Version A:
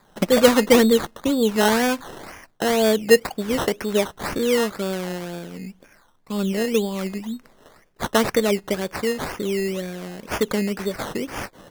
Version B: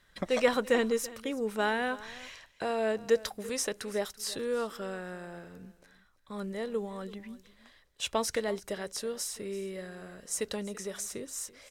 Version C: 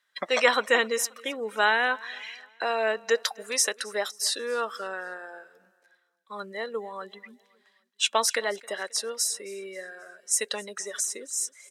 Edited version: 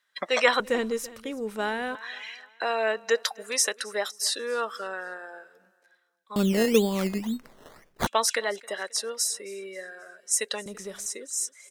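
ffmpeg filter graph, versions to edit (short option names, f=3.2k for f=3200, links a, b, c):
-filter_complex "[1:a]asplit=2[a][b];[2:a]asplit=4[c][d][e][f];[c]atrim=end=0.602[g];[a]atrim=start=0.598:end=1.952[h];[d]atrim=start=1.948:end=6.362[i];[0:a]atrim=start=6.358:end=8.072[j];[e]atrim=start=8.068:end=10.662[k];[b]atrim=start=10.658:end=11.062[l];[f]atrim=start=11.058[m];[g][h]acrossfade=d=0.004:c1=hsin:c2=hsin[n];[n][i]acrossfade=d=0.004:c1=hsin:c2=hsin[o];[o][j]acrossfade=d=0.004:c1=hsin:c2=hsin[p];[p][k]acrossfade=d=0.004:c1=hsin:c2=hsin[q];[q][l]acrossfade=d=0.004:c1=hsin:c2=hsin[r];[r][m]acrossfade=d=0.004:c1=hsin:c2=hsin"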